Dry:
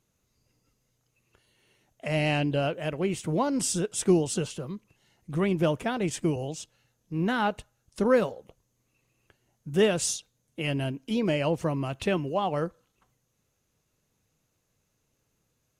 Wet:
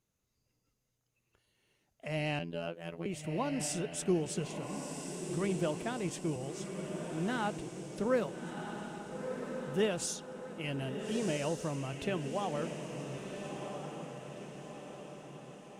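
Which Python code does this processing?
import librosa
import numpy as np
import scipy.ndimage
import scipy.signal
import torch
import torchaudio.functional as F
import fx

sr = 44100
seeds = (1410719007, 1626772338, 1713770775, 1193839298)

y = fx.robotise(x, sr, hz=84.1, at=(2.39, 3.06))
y = fx.echo_diffused(y, sr, ms=1346, feedback_pct=53, wet_db=-6.0)
y = y * librosa.db_to_amplitude(-8.5)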